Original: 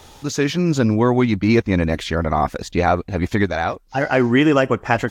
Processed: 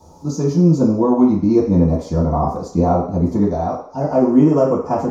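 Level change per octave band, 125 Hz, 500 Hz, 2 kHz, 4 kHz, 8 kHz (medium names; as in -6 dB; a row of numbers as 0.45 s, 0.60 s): +3.0 dB, +2.0 dB, under -20 dB, under -10 dB, no reading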